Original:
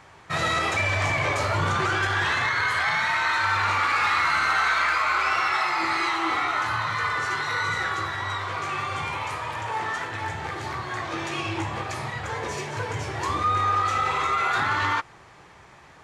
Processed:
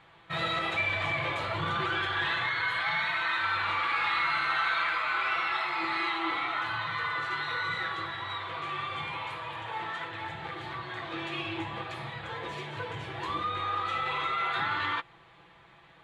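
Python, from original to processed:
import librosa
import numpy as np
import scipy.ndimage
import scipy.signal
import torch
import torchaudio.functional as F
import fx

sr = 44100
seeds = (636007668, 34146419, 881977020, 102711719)

y = fx.high_shelf_res(x, sr, hz=4500.0, db=-7.5, q=3.0)
y = y + 0.53 * np.pad(y, (int(6.0 * sr / 1000.0), 0))[:len(y)]
y = y * 10.0 ** (-8.5 / 20.0)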